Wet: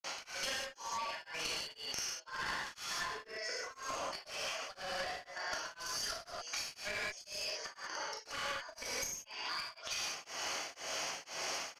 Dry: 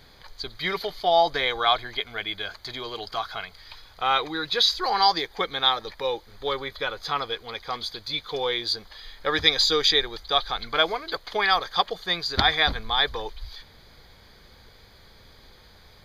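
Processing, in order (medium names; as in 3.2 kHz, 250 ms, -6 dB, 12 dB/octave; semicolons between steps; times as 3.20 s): rattle on loud lows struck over -35 dBFS, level -23 dBFS; slow attack 357 ms; high-pass 420 Hz 12 dB/octave; distance through air 59 m; inverted gate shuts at -28 dBFS, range -29 dB; granulator 100 ms, grains 20 per s, pitch spread up and down by 0 st; gated-style reverb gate 300 ms flat, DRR -7.5 dB; one-sided clip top -46 dBFS; compression 6:1, threshold -51 dBFS, peak gain reduction 14.5 dB; wide varispeed 1.36×; resampled via 32 kHz; tremolo of two beating tones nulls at 2 Hz; trim +15.5 dB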